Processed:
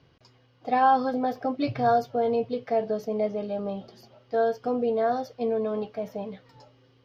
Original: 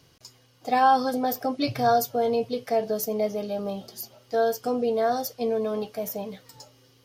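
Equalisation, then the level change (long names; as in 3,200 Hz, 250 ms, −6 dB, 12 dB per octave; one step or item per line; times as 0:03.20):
high-frequency loss of the air 270 metres
0.0 dB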